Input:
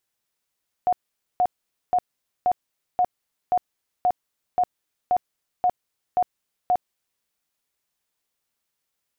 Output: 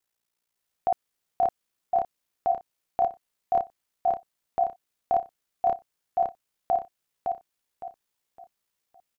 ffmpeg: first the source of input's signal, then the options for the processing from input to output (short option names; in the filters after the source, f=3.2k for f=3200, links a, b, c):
-f lavfi -i "aevalsrc='0.158*sin(2*PI*724*mod(t,0.53))*lt(mod(t,0.53),41/724)':d=6.36:s=44100"
-filter_complex "[0:a]aeval=exprs='val(0)*sin(2*PI*29*n/s)':c=same,asplit=2[a][b];[b]aecho=0:1:561|1122|1683|2244:0.631|0.208|0.0687|0.0227[c];[a][c]amix=inputs=2:normalize=0"